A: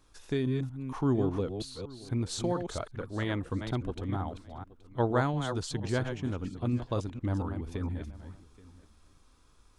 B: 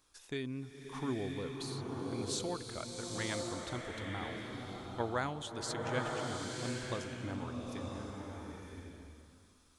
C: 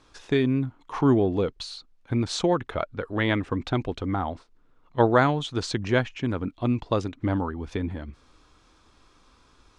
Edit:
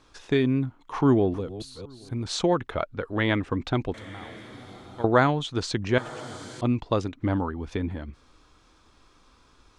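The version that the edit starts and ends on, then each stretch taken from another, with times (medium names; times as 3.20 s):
C
1.34–2.25 s: from A
3.94–5.04 s: from B
5.98–6.61 s: from B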